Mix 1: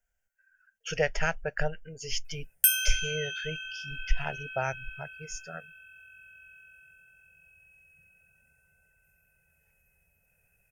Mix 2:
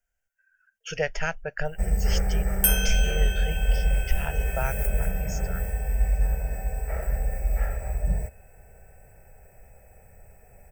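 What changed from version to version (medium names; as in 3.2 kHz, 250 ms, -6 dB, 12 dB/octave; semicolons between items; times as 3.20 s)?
first sound: unmuted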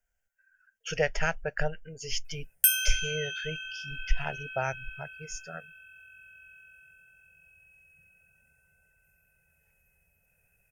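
first sound: muted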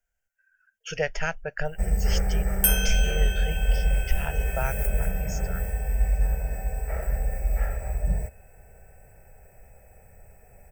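first sound: unmuted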